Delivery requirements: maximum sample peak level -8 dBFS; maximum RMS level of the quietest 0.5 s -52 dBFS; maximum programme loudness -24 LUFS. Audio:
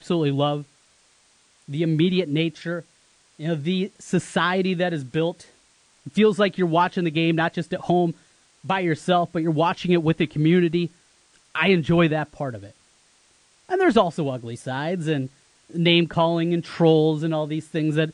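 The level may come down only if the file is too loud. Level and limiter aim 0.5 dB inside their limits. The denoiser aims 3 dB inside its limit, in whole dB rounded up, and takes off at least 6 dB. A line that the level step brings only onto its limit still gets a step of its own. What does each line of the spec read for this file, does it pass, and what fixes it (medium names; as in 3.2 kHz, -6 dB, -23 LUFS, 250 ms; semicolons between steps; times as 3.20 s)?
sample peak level -3.0 dBFS: fail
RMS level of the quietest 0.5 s -60 dBFS: pass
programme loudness -22.5 LUFS: fail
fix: trim -2 dB; peak limiter -8.5 dBFS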